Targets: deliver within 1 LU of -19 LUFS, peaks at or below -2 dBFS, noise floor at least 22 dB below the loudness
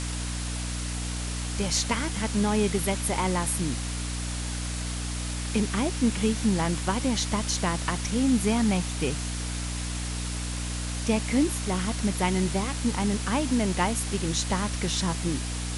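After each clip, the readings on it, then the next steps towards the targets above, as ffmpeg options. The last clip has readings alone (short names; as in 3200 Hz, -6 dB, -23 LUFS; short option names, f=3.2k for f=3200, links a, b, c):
hum 60 Hz; harmonics up to 300 Hz; hum level -30 dBFS; noise floor -32 dBFS; noise floor target -50 dBFS; loudness -27.5 LUFS; peak -11.5 dBFS; loudness target -19.0 LUFS
-> -af "bandreject=f=60:t=h:w=4,bandreject=f=120:t=h:w=4,bandreject=f=180:t=h:w=4,bandreject=f=240:t=h:w=4,bandreject=f=300:t=h:w=4"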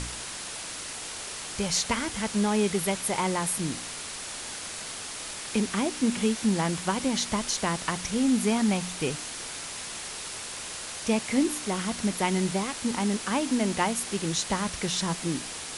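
hum none; noise floor -38 dBFS; noise floor target -51 dBFS
-> -af "afftdn=nr=13:nf=-38"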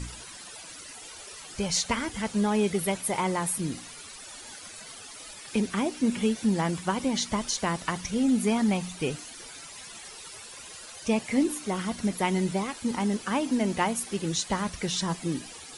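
noise floor -45 dBFS; noise floor target -50 dBFS
-> -af "afftdn=nr=6:nf=-45"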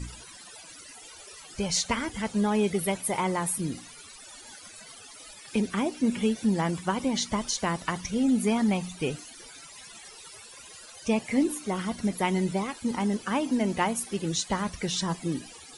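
noise floor -48 dBFS; noise floor target -50 dBFS
-> -af "afftdn=nr=6:nf=-48"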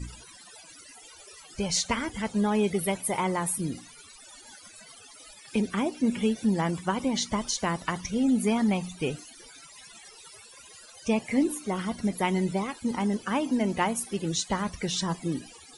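noise floor -51 dBFS; loudness -28.0 LUFS; peak -12.5 dBFS; loudness target -19.0 LUFS
-> -af "volume=9dB"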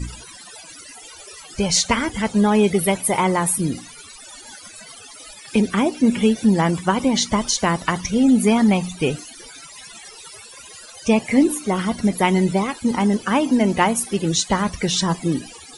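loudness -19.0 LUFS; peak -3.5 dBFS; noise floor -42 dBFS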